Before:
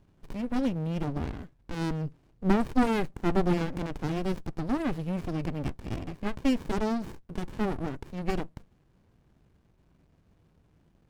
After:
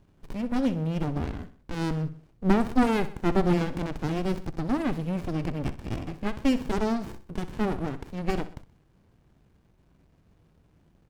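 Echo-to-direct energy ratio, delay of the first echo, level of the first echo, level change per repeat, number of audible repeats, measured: −13.5 dB, 63 ms, −14.5 dB, −6.5 dB, 3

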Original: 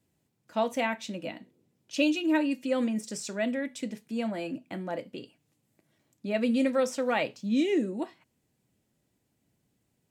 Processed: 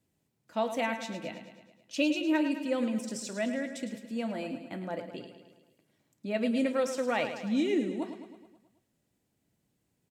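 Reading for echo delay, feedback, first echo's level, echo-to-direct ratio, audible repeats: 107 ms, 59%, −10.0 dB, −8.0 dB, 6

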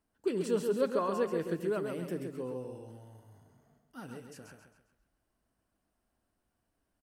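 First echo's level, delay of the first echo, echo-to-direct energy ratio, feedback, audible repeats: −6.0 dB, 134 ms, −5.5 dB, 39%, 4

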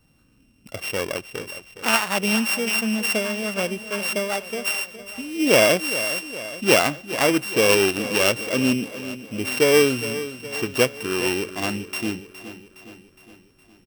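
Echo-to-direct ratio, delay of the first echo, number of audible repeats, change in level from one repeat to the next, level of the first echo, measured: −12.0 dB, 414 ms, 5, −5.0 dB, −13.5 dB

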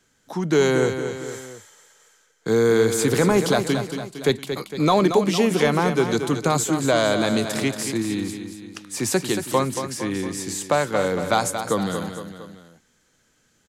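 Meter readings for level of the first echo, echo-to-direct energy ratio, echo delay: −8.5 dB, −7.0 dB, 229 ms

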